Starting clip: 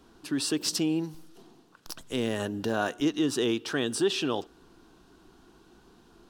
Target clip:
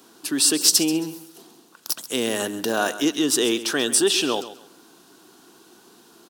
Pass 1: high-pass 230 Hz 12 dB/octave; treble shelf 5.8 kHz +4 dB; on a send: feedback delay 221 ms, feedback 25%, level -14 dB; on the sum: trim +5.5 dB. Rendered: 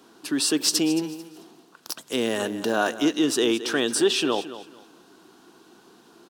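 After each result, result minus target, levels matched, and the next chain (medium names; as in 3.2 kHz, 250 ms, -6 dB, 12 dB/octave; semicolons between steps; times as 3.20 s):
echo 87 ms late; 8 kHz band -4.5 dB
high-pass 230 Hz 12 dB/octave; treble shelf 5.8 kHz +4 dB; on a send: feedback delay 134 ms, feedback 25%, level -14 dB; on the sum: trim +5.5 dB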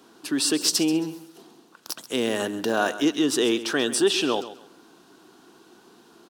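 8 kHz band -4.5 dB
high-pass 230 Hz 12 dB/octave; treble shelf 5.8 kHz +15.5 dB; on a send: feedback delay 134 ms, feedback 25%, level -14 dB; on the sum: trim +5.5 dB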